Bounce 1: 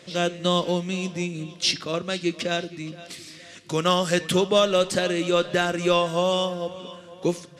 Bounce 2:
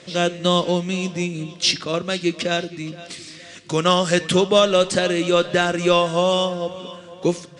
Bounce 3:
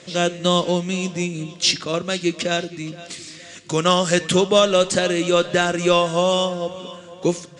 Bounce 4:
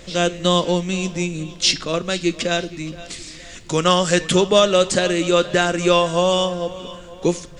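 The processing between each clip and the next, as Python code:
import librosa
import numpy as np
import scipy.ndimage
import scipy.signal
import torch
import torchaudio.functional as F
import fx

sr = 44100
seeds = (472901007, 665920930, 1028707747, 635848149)

y1 = scipy.signal.sosfilt(scipy.signal.butter(12, 9900.0, 'lowpass', fs=sr, output='sos'), x)
y1 = y1 * librosa.db_to_amplitude(4.0)
y2 = fx.peak_eq(y1, sr, hz=7000.0, db=6.5, octaves=0.27)
y3 = fx.dmg_noise_colour(y2, sr, seeds[0], colour='brown', level_db=-45.0)
y3 = y3 * librosa.db_to_amplitude(1.0)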